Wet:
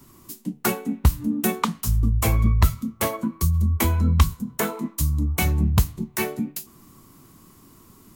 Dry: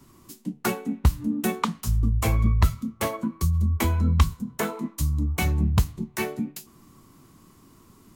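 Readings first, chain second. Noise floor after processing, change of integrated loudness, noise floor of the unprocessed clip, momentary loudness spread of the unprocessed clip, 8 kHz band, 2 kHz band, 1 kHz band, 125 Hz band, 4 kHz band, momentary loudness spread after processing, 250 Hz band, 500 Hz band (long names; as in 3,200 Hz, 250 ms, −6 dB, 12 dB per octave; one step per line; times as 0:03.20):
−52 dBFS, +2.5 dB, −55 dBFS, 8 LU, +5.0 dB, +2.0 dB, +2.0 dB, +2.0 dB, +3.0 dB, 7 LU, +2.0 dB, +2.0 dB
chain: high-shelf EQ 11,000 Hz +10 dB
level +2 dB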